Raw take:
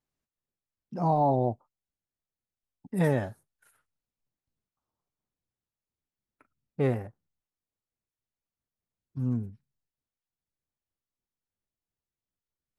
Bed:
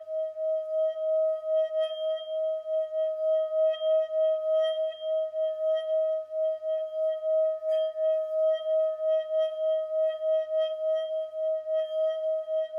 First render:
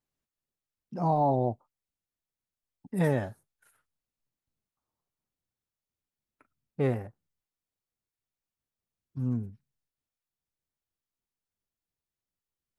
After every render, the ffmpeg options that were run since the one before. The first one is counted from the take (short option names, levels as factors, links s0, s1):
-af "volume=0.891"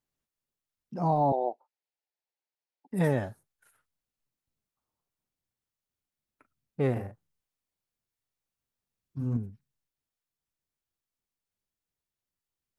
-filter_complex "[0:a]asettb=1/sr,asplit=3[s0][s1][s2];[s0]atrim=end=1.324[s3];[s1]atrim=start=1.32:end=2.91,asetpts=PTS-STARTPTS,afade=t=in:d=0.004:c=qsin,afade=t=out:st=1.586:d=0.004:c=qsin,highpass=f=380:w=0.5412,highpass=f=380:w=1.3066,equalizer=f=850:t=q:w=4:g=6,equalizer=f=1200:t=q:w=4:g=-10,equalizer=f=3300:t=q:w=4:g=-4,lowpass=f=5000:w=0.5412,lowpass=f=5000:w=1.3066[s4];[s2]atrim=start=2.906[s5];[s3][s4]acrossfade=d=0.004:c1=hsin:c2=qsin[s6];[s6][s5]acrossfade=d=0.004:c1=qsin:c2=hsin,asettb=1/sr,asplit=3[s7][s8][s9];[s7]atrim=end=6.924[s10];[s8]atrim=start=6.92:end=9.37,asetpts=PTS-STARTPTS,afade=t=in:d=0.004:c=qsin,afade=t=out:st=2.446:d=0.004:c=qsin,asplit=2[s11][s12];[s12]adelay=42,volume=0.631[s13];[s11][s13]amix=inputs=2:normalize=0,atrim=end_sample=108045[s14];[s9]atrim=start=9.366[s15];[s10][s14]acrossfade=d=0.004:c1=hsin:c2=qsin[s16];[s16][s15]acrossfade=d=0.004:c1=qsin:c2=hsin"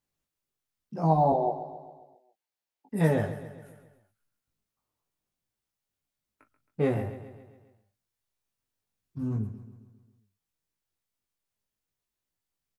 -filter_complex "[0:a]asplit=2[s0][s1];[s1]adelay=19,volume=0.75[s2];[s0][s2]amix=inputs=2:normalize=0,aecho=1:1:135|270|405|540|675|810:0.224|0.123|0.0677|0.0372|0.0205|0.0113"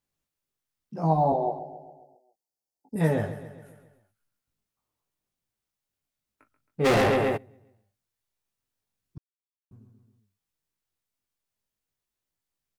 -filter_complex "[0:a]asettb=1/sr,asplit=3[s0][s1][s2];[s0]atrim=end=1.594[s3];[s1]atrim=start=1.59:end=2.96,asetpts=PTS-STARTPTS,afade=t=in:d=0.004:c=qsin,afade=t=out:st=1.366:d=0.004:c=qsin,asuperstop=centerf=2000:order=12:qfactor=0.56[s4];[s2]atrim=start=2.956[s5];[s3][s4]acrossfade=d=0.004:c1=hsin:c2=qsin[s6];[s6][s5]acrossfade=d=0.004:c1=qsin:c2=hsin,asplit=3[s7][s8][s9];[s7]afade=t=out:st=6.84:d=0.02[s10];[s8]asplit=2[s11][s12];[s12]highpass=f=720:p=1,volume=79.4,asoftclip=type=tanh:threshold=0.2[s13];[s11][s13]amix=inputs=2:normalize=0,lowpass=f=5700:p=1,volume=0.501,afade=t=in:st=6.84:d=0.02,afade=t=out:st=7.36:d=0.02[s14];[s9]afade=t=in:st=7.36:d=0.02[s15];[s10][s14][s15]amix=inputs=3:normalize=0,asplit=3[s16][s17][s18];[s16]atrim=end=9.18,asetpts=PTS-STARTPTS,afade=t=out:st=9.176:d=0.004:c=hsin[s19];[s17]atrim=start=9.18:end=9.71,asetpts=PTS-STARTPTS,volume=0[s20];[s18]atrim=start=9.71,asetpts=PTS-STARTPTS,afade=t=in:d=0.004:c=hsin[s21];[s19][s20][s21]concat=n=3:v=0:a=1"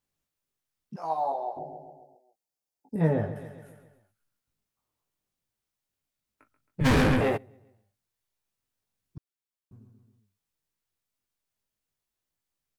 -filter_complex "[0:a]asettb=1/sr,asplit=3[s0][s1][s2];[s0]atrim=end=0.964[s3];[s1]atrim=start=0.96:end=1.57,asetpts=PTS-STARTPTS,afade=t=in:d=0.004:c=qsin,afade=t=out:st=0.606:d=0.004:c=qsin,highpass=870[s4];[s2]atrim=start=1.566[s5];[s3][s4]acrossfade=d=0.004:c1=hsin:c2=qsin[s6];[s6][s5]acrossfade=d=0.004:c1=qsin:c2=hsin,asettb=1/sr,asplit=3[s7][s8][s9];[s7]atrim=end=2.964[s10];[s8]atrim=start=2.96:end=3.36,asetpts=PTS-STARTPTS,afade=t=in:d=0.004:c=qsin,afade=t=out:st=0.396:d=0.004:c=qsin,lowpass=f=1200:p=1[s11];[s9]atrim=start=3.356[s12];[s10][s11]acrossfade=d=0.004:c1=hsin:c2=qsin[s13];[s13][s12]acrossfade=d=0.004:c1=qsin:c2=hsin,asettb=1/sr,asplit=3[s14][s15][s16];[s14]atrim=end=6.804[s17];[s15]atrim=start=6.8:end=7.21,asetpts=PTS-STARTPTS,afade=t=in:d=0.004:c=qsin,afade=t=out:st=0.406:d=0.004:c=qsin,afreqshift=-270[s18];[s16]atrim=start=7.206[s19];[s17][s18]acrossfade=d=0.004:c1=hsin:c2=qsin[s20];[s20][s19]acrossfade=d=0.004:c1=qsin:c2=hsin"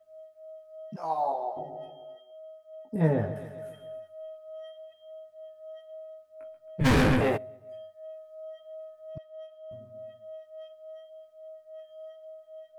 -filter_complex "[1:a]volume=0.133[s0];[0:a][s0]amix=inputs=2:normalize=0"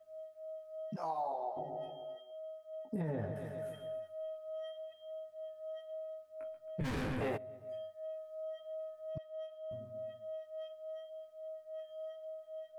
-af "alimiter=limit=0.0891:level=0:latency=1:release=33,acompressor=threshold=0.0126:ratio=2.5"